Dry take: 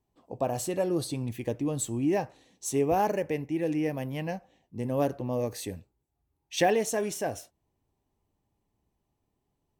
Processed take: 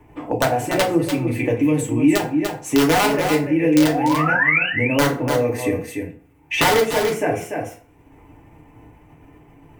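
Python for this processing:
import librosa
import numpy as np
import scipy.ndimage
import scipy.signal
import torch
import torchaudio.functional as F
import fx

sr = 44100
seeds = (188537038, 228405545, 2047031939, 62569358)

p1 = fx.spec_paint(x, sr, seeds[0], shape='rise', start_s=3.69, length_s=1.0, low_hz=450.0, high_hz=3000.0, level_db=-31.0)
p2 = fx.level_steps(p1, sr, step_db=13)
p3 = p1 + (p2 * 10.0 ** (0.0 / 20.0))
p4 = fx.high_shelf_res(p3, sr, hz=3100.0, db=-10.0, q=3.0)
p5 = (np.mod(10.0 ** (13.0 / 20.0) * p4 + 1.0, 2.0) - 1.0) / 10.0 ** (13.0 / 20.0)
p6 = p5 + fx.echo_single(p5, sr, ms=292, db=-9.5, dry=0)
p7 = fx.rev_fdn(p6, sr, rt60_s=0.38, lf_ratio=1.0, hf_ratio=0.65, size_ms=20.0, drr_db=-2.5)
y = fx.band_squash(p7, sr, depth_pct=70)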